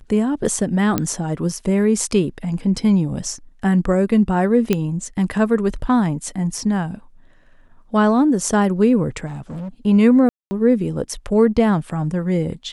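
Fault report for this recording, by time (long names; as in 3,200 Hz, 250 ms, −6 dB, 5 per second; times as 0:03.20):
0:00.98: click −5 dBFS
0:04.73: click −5 dBFS
0:09.26–0:09.69: clipping −26.5 dBFS
0:10.29–0:10.51: drop-out 220 ms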